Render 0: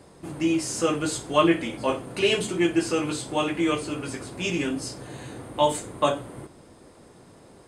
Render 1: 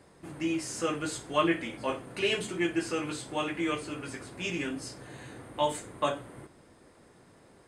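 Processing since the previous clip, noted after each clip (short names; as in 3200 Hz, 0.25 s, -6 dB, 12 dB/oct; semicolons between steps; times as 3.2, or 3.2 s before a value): bell 1800 Hz +5.5 dB 1 oct; gain -7.5 dB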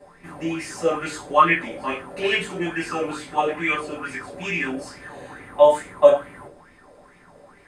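reverb RT60 0.25 s, pre-delay 4 ms, DRR -5.5 dB; LFO bell 2.3 Hz 520–2300 Hz +16 dB; gain -5.5 dB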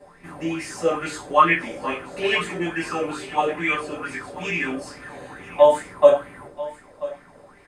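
echo 0.986 s -17 dB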